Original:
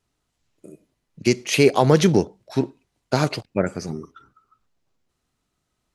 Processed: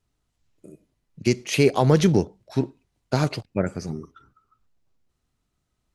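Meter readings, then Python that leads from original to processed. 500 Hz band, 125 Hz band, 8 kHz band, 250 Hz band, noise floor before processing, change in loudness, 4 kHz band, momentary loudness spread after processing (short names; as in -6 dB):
-3.0 dB, +0.5 dB, -4.0 dB, -1.5 dB, -77 dBFS, -2.0 dB, -4.0 dB, 15 LU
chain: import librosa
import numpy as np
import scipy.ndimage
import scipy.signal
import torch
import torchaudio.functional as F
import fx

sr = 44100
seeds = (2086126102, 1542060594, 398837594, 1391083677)

y = fx.low_shelf(x, sr, hz=140.0, db=9.0)
y = y * librosa.db_to_amplitude(-4.0)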